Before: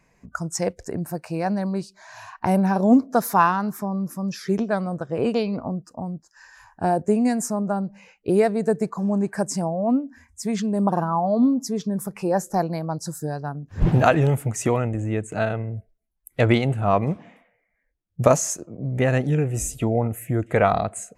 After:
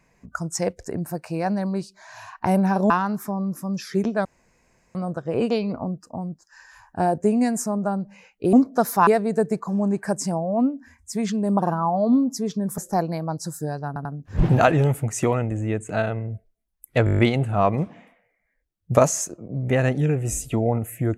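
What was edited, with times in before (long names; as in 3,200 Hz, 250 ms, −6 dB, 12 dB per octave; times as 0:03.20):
0:02.90–0:03.44: move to 0:08.37
0:04.79: splice in room tone 0.70 s
0:12.08–0:12.39: remove
0:13.48: stutter 0.09 s, 3 plays
0:16.48: stutter 0.02 s, 8 plays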